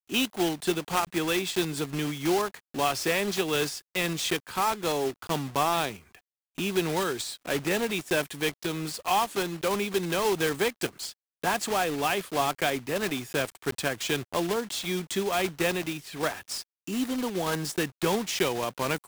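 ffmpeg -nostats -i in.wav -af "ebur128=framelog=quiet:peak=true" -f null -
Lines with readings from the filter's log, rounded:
Integrated loudness:
  I:         -28.5 LUFS
  Threshold: -38.6 LUFS
Loudness range:
  LRA:         2.0 LU
  Threshold: -48.7 LUFS
  LRA low:   -29.8 LUFS
  LRA high:  -27.8 LUFS
True peak:
  Peak:      -11.7 dBFS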